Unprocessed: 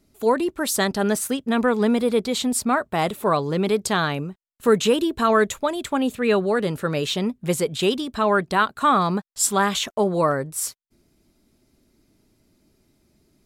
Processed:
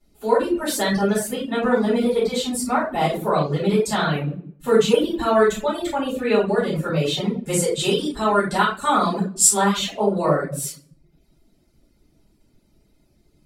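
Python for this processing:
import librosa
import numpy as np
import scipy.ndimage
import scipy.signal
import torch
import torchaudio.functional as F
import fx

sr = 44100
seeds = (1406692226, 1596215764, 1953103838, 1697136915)

y = fx.peak_eq(x, sr, hz=8300.0, db=10.0, octaves=1.2, at=(7.34, 9.71))
y = fx.room_shoebox(y, sr, seeds[0], volume_m3=120.0, walls='mixed', distance_m=4.2)
y = fx.dereverb_blind(y, sr, rt60_s=0.57)
y = F.gain(torch.from_numpy(y), -13.0).numpy()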